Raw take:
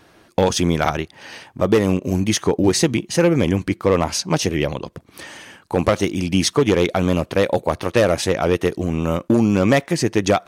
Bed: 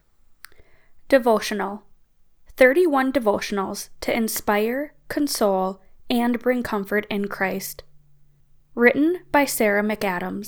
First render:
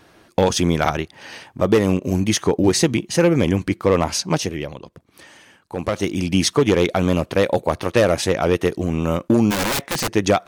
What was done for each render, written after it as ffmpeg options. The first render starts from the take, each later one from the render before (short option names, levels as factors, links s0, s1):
-filter_complex "[0:a]asplit=3[s0][s1][s2];[s0]afade=t=out:st=9.5:d=0.02[s3];[s1]aeval=exprs='(mod(6.31*val(0)+1,2)-1)/6.31':c=same,afade=t=in:st=9.5:d=0.02,afade=t=out:st=10.1:d=0.02[s4];[s2]afade=t=in:st=10.1:d=0.02[s5];[s3][s4][s5]amix=inputs=3:normalize=0,asplit=3[s6][s7][s8];[s6]atrim=end=4.74,asetpts=PTS-STARTPTS,afade=t=out:st=4.31:d=0.43:c=qua:silence=0.375837[s9];[s7]atrim=start=4.74:end=5.69,asetpts=PTS-STARTPTS,volume=0.376[s10];[s8]atrim=start=5.69,asetpts=PTS-STARTPTS,afade=t=in:d=0.43:c=qua:silence=0.375837[s11];[s9][s10][s11]concat=n=3:v=0:a=1"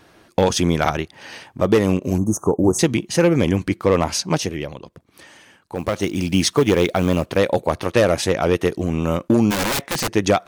-filter_complex "[0:a]asettb=1/sr,asplit=3[s0][s1][s2];[s0]atrim=end=2.184[s3];[s1]atrim=start=2.18:end=2.79,asetpts=PTS-STARTPTS,afade=t=in:d=0.004:c=qsin,afade=t=out:st=0.606:d=0.004:c=qsin,asuperstop=centerf=2900:order=12:qfactor=0.56[s4];[s2]atrim=start=2.786[s5];[s3][s4]acrossfade=d=0.004:c1=hsin:c2=qsin[s6];[s6][s5]acrossfade=d=0.004:c1=qsin:c2=hsin,asettb=1/sr,asplit=3[s7][s8][s9];[s7]atrim=end=5.754[s10];[s8]atrim=start=5.75:end=7.37,asetpts=PTS-STARTPTS,afade=t=in:d=0.004:c=qsin,afade=t=out:st=1.616:d=0.004:c=qsin,acrusher=bits=7:mode=log:mix=0:aa=0.000001[s11];[s9]atrim=start=7.366[s12];[s10][s11]acrossfade=d=0.004:c1=hsin:c2=qsin[s13];[s13][s12]acrossfade=d=0.004:c1=qsin:c2=hsin"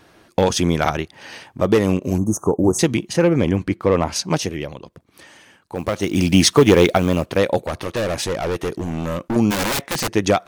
-filter_complex "[0:a]asettb=1/sr,asplit=3[s0][s1][s2];[s0]atrim=end=3.134[s3];[s1]atrim=start=3.13:end=4.16,asetpts=PTS-STARTPTS,afade=t=in:d=0.004:c=qsin,afade=t=out:st=1.026:d=0.004:c=qsin,highshelf=f=3700:g=-8.5[s4];[s2]atrim=start=4.156[s5];[s3][s4]acrossfade=d=0.004:c1=hsin:c2=qsin[s6];[s6][s5]acrossfade=d=0.004:c1=qsin:c2=hsin,asettb=1/sr,asplit=3[s7][s8][s9];[s7]atrim=end=6.114[s10];[s8]atrim=start=6.11:end=6.98,asetpts=PTS-STARTPTS,afade=t=in:d=0.004:c=qsin,afade=t=out:st=0.866:d=0.004:c=qsin,acontrast=28[s11];[s9]atrim=start=6.976[s12];[s10][s11]acrossfade=d=0.004:c1=hsin:c2=qsin[s13];[s13][s12]acrossfade=d=0.004:c1=qsin:c2=hsin,asettb=1/sr,asplit=3[s14][s15][s16];[s14]atrim=end=7.644[s17];[s15]atrim=start=7.64:end=9.36,asetpts=PTS-STARTPTS,afade=t=in:d=0.004:c=qsin,afade=t=out:st=1.716:d=0.004:c=qsin,volume=8.91,asoftclip=hard,volume=0.112[s18];[s16]atrim=start=9.356[s19];[s17][s18]acrossfade=d=0.004:c1=hsin:c2=qsin[s20];[s20][s19]acrossfade=d=0.004:c1=qsin:c2=hsin"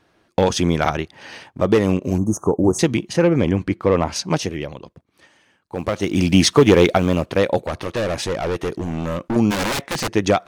-af "agate=range=0.355:threshold=0.00708:ratio=16:detection=peak,highshelf=f=10000:g=-10.5"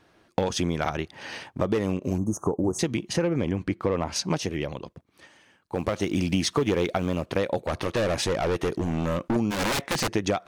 -af "acompressor=threshold=0.0708:ratio=4"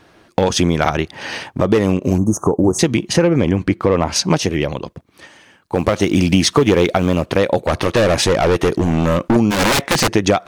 -af "volume=3.55,alimiter=limit=0.794:level=0:latency=1"